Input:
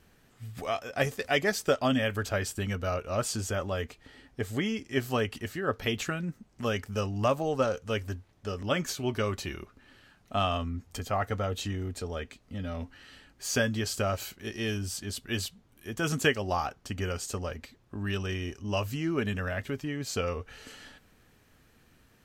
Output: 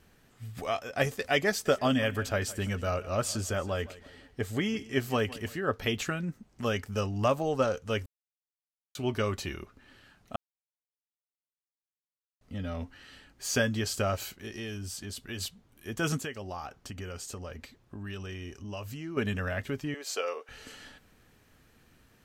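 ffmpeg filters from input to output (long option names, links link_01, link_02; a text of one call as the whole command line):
ffmpeg -i in.wav -filter_complex "[0:a]asplit=3[link_01][link_02][link_03];[link_01]afade=type=out:start_time=1.65:duration=0.02[link_04];[link_02]aecho=1:1:165|330|495:0.119|0.0499|0.021,afade=type=in:start_time=1.65:duration=0.02,afade=type=out:start_time=5.56:duration=0.02[link_05];[link_03]afade=type=in:start_time=5.56:duration=0.02[link_06];[link_04][link_05][link_06]amix=inputs=3:normalize=0,asplit=3[link_07][link_08][link_09];[link_07]afade=type=out:start_time=14.41:duration=0.02[link_10];[link_08]acompressor=threshold=-36dB:ratio=3:attack=3.2:release=140:knee=1:detection=peak,afade=type=in:start_time=14.41:duration=0.02,afade=type=out:start_time=15.4:duration=0.02[link_11];[link_09]afade=type=in:start_time=15.4:duration=0.02[link_12];[link_10][link_11][link_12]amix=inputs=3:normalize=0,asettb=1/sr,asplit=3[link_13][link_14][link_15];[link_13]atrim=end=16.174[link_16];[link_14]atrim=start=16.17:end=19.17,asetpts=PTS-STARTPTS,afade=type=in:duration=0.004:curve=qsin,afade=type=out:start_time=2.996:duration=0.004:curve=qsin,acompressor=threshold=-39dB:ratio=2.5:attack=3.2:release=140:knee=1:detection=peak[link_17];[link_15]atrim=start=19.166[link_18];[link_16][link_17]acrossfade=duration=0.004:curve1=hsin:curve2=qsin[link_19];[link_19][link_18]acrossfade=duration=0.004:curve1=qsin:curve2=hsin,asettb=1/sr,asplit=3[link_20][link_21][link_22];[link_20]atrim=end=19.944[link_23];[link_21]atrim=start=19.94:end=20.49,asetpts=PTS-STARTPTS,afade=type=in:duration=0.004:curve=qsin,afade=type=out:start_time=0.546:duration=0.004:curve=qsin,highpass=frequency=410:width=0.5412,highpass=frequency=410:width=1.3066[link_24];[link_22]atrim=start=20.486[link_25];[link_23][link_24]acrossfade=duration=0.004:curve1=hsin:curve2=qsin[link_26];[link_26][link_25]acrossfade=duration=0.004:curve1=qsin:curve2=hsin,asplit=5[link_27][link_28][link_29][link_30][link_31];[link_27]atrim=end=8.06,asetpts=PTS-STARTPTS,afade=type=out:start_time=8.056:duration=0.004:curve=hsin[link_32];[link_28]atrim=start=8.06:end=8.95,asetpts=PTS-STARTPTS,volume=0[link_33];[link_29]atrim=start=8.95:end=10.36,asetpts=PTS-STARTPTS,afade=type=in:duration=0.004:curve=hsin,afade=type=out:start_time=1.406:duration=0.004:curve=hsin[link_34];[link_30]atrim=start=10.36:end=12.41,asetpts=PTS-STARTPTS,volume=0[link_35];[link_31]atrim=start=12.41,asetpts=PTS-STARTPTS,afade=type=in:duration=0.004:curve=hsin[link_36];[link_32][link_33][link_34][link_35][link_36]concat=n=5:v=0:a=1" out.wav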